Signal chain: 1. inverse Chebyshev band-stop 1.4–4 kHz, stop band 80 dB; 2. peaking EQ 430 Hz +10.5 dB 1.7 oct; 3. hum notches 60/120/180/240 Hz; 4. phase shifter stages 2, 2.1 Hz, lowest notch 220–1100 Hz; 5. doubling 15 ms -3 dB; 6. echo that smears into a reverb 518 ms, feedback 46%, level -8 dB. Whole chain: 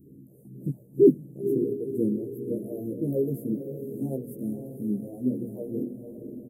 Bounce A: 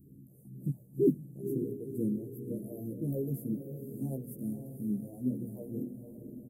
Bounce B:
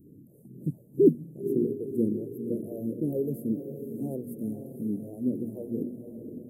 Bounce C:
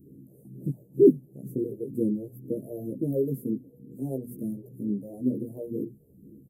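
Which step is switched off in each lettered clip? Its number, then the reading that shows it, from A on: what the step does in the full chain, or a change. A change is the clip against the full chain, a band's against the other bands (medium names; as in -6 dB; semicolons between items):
2, momentary loudness spread change -3 LU; 5, momentary loudness spread change -2 LU; 6, echo-to-direct -7.0 dB to none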